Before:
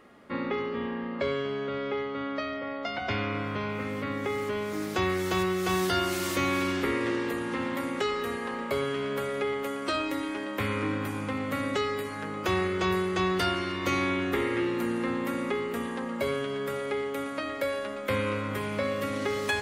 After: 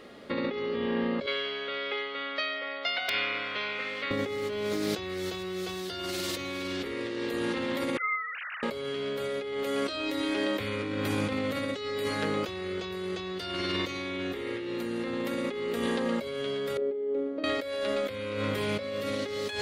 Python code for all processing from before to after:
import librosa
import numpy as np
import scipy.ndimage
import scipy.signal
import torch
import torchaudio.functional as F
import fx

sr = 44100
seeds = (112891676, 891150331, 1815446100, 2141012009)

y = fx.chain(x, sr, fx.bandpass_q(hz=2300.0, q=0.87),
    fx.overflow_wrap(gain_db=23.5), at=(1.26, 4.11))
y = fx.chain(y, sr, fx.sine_speech(),
    fx.highpass(hz=1400.0, slope=24), at=(7.97, 8.63))
y = fx.chain(y, sr, fx.bandpass_q(hz=360.0, q=3.1),
    fx.doubler(ms=43.0, db=-10.5), at=(16.77, 17.44))
y = fx.graphic_eq_10(y, sr, hz=(500, 1000, 4000), db=(6, -4, 10))
y = fx.over_compress(y, sr, threshold_db=-32.0, ratio=-1.0)